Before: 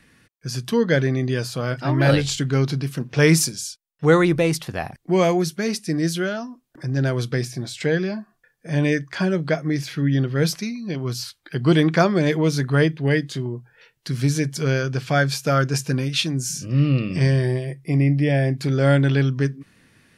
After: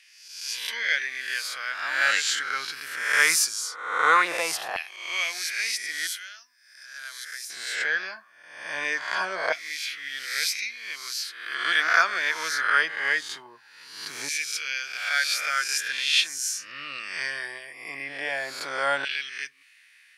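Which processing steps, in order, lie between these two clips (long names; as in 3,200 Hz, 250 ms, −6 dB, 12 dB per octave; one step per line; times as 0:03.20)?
peak hold with a rise ahead of every peak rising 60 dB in 0.86 s
auto-filter high-pass saw down 0.21 Hz 940–2,600 Hz
0:06.07–0:07.50: first-order pre-emphasis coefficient 0.9
level −3.5 dB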